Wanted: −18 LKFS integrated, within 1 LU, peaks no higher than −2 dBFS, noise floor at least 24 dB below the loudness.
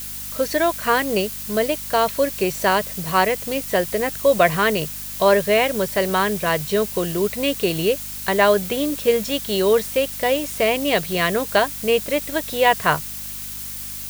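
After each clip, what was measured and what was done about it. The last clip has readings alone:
mains hum 50 Hz; hum harmonics up to 250 Hz; level of the hum −41 dBFS; background noise floor −32 dBFS; target noise floor −45 dBFS; integrated loudness −20.5 LKFS; sample peak −2.0 dBFS; target loudness −18.0 LKFS
→ hum removal 50 Hz, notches 5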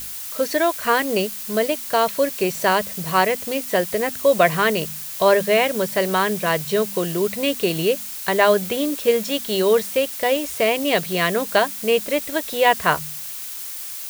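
mains hum none found; background noise floor −32 dBFS; target noise floor −45 dBFS
→ noise reduction from a noise print 13 dB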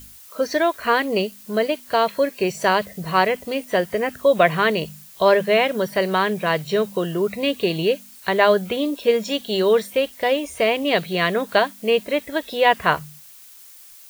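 background noise floor −45 dBFS; integrated loudness −20.5 LKFS; sample peak −2.0 dBFS; target loudness −18.0 LKFS
→ level +2.5 dB
brickwall limiter −2 dBFS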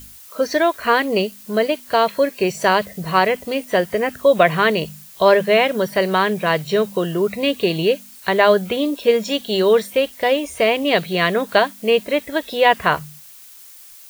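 integrated loudness −18.0 LKFS; sample peak −2.0 dBFS; background noise floor −43 dBFS

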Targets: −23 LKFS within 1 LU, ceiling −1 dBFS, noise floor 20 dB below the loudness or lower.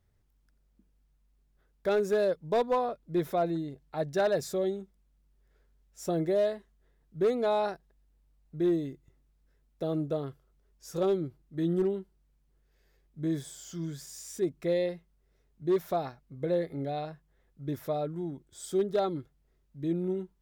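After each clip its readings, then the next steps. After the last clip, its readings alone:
share of clipped samples 0.4%; peaks flattened at −20.5 dBFS; integrated loudness −31.5 LKFS; sample peak −20.5 dBFS; target loudness −23.0 LKFS
→ clipped peaks rebuilt −20.5 dBFS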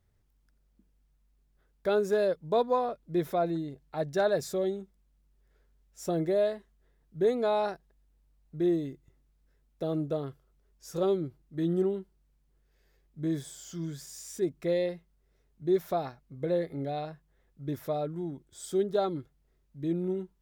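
share of clipped samples 0.0%; integrated loudness −31.0 LKFS; sample peak −16.5 dBFS; target loudness −23.0 LKFS
→ level +8 dB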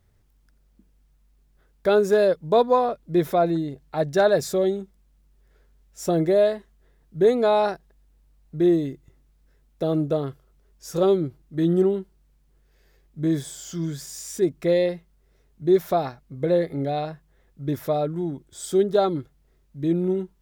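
integrated loudness −23.5 LKFS; sample peak −8.5 dBFS; background noise floor −62 dBFS

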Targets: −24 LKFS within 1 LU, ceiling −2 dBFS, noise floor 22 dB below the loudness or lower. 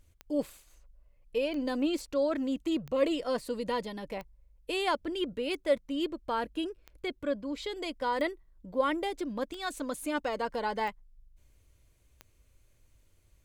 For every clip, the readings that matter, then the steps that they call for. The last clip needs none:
number of clicks 10; integrated loudness −33.0 LKFS; sample peak −15.0 dBFS; target loudness −24.0 LKFS
→ click removal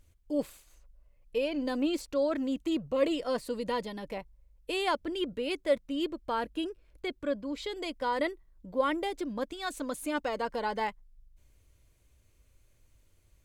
number of clicks 0; integrated loudness −33.0 LKFS; sample peak −15.0 dBFS; target loudness −24.0 LKFS
→ level +9 dB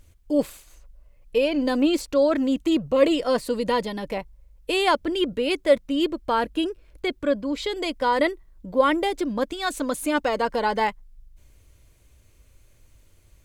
integrated loudness −24.0 LKFS; sample peak −6.0 dBFS; background noise floor −57 dBFS

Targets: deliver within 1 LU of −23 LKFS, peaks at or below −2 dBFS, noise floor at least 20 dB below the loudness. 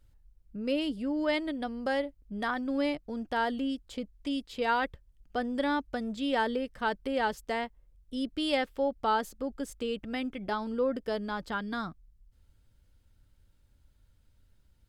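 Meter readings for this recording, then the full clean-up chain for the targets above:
integrated loudness −32.5 LKFS; sample peak −15.0 dBFS; target loudness −23.0 LKFS
→ level +9.5 dB

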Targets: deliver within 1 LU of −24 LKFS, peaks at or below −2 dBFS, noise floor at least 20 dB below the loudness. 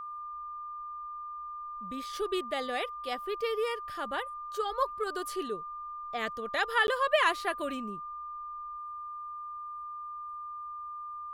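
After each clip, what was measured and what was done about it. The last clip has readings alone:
number of dropouts 1; longest dropout 11 ms; interfering tone 1,200 Hz; level of the tone −38 dBFS; integrated loudness −34.0 LKFS; sample peak −13.0 dBFS; target loudness −24.0 LKFS
→ repair the gap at 0:06.87, 11 ms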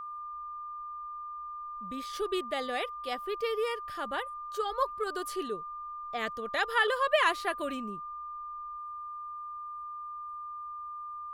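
number of dropouts 0; interfering tone 1,200 Hz; level of the tone −38 dBFS
→ notch filter 1,200 Hz, Q 30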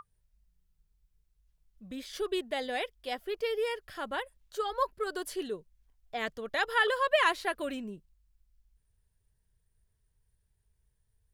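interfering tone none found; integrated loudness −32.5 LKFS; sample peak −13.0 dBFS; target loudness −24.0 LKFS
→ level +8.5 dB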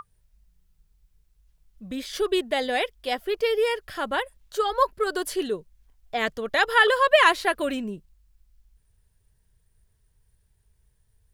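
integrated loudness −24.0 LKFS; sample peak −4.5 dBFS; background noise floor −67 dBFS

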